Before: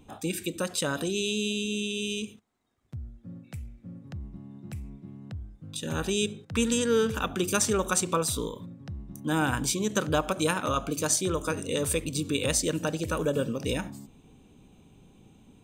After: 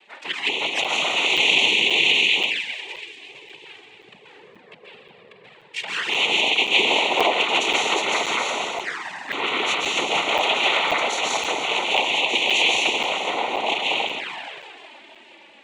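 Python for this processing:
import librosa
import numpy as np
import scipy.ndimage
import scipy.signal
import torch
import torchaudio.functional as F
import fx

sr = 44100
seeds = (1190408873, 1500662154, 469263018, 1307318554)

p1 = fx.law_mismatch(x, sr, coded='mu')
p2 = fx.spec_gate(p1, sr, threshold_db=-30, keep='strong')
p3 = scipy.signal.sosfilt(scipy.signal.butter(2, 4100.0, 'lowpass', fs=sr, output='sos'), p2)
p4 = p3 + fx.echo_feedback(p3, sr, ms=467, feedback_pct=48, wet_db=-14.5, dry=0)
p5 = fx.rev_plate(p4, sr, seeds[0], rt60_s=2.1, hf_ratio=0.8, predelay_ms=120, drr_db=-4.5)
p6 = fx.noise_vocoder(p5, sr, seeds[1], bands=6)
p7 = fx.env_flanger(p6, sr, rest_ms=5.7, full_db=-22.5)
p8 = fx.dynamic_eq(p7, sr, hz=1700.0, q=0.87, threshold_db=-48.0, ratio=4.0, max_db=5)
p9 = scipy.signal.sosfilt(scipy.signal.butter(2, 650.0, 'highpass', fs=sr, output='sos'), p8)
p10 = fx.peak_eq(p9, sr, hz=2600.0, db=14.5, octaves=0.87)
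p11 = fx.buffer_crackle(p10, sr, first_s=0.84, period_s=0.53, block=256, kind='zero')
y = p11 * 10.0 ** (2.5 / 20.0)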